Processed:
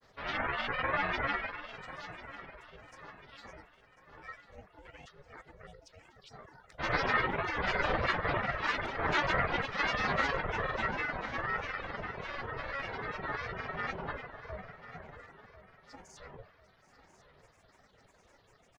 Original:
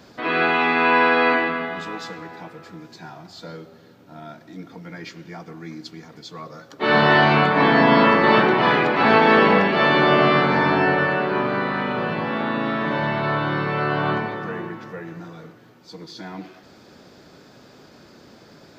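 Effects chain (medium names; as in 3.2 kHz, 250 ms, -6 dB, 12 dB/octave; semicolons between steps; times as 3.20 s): feedback comb 460 Hz, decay 0.74 s, mix 80%; granulator, spray 21 ms, pitch spread up and down by 7 st; peaking EQ 1.6 kHz +9 dB 0.34 oct; ring modulator 280 Hz; reverb removal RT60 1.3 s; feedback delay 1045 ms, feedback 42%, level -15 dB; loudspeaker Doppler distortion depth 0.18 ms; trim +2.5 dB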